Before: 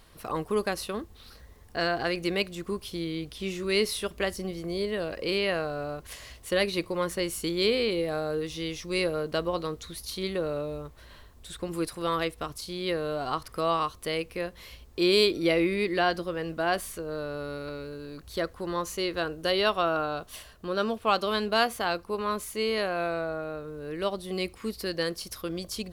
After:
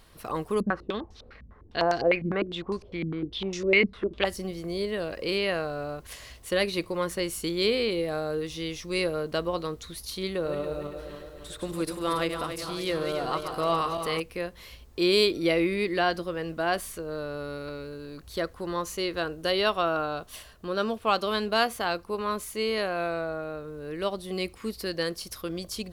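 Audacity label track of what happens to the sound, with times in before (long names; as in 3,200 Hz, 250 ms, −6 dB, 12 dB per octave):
0.600000	4.250000	low-pass on a step sequencer 9.9 Hz 210–5,700 Hz
10.310000	14.200000	feedback delay that plays each chunk backwards 141 ms, feedback 73%, level −7 dB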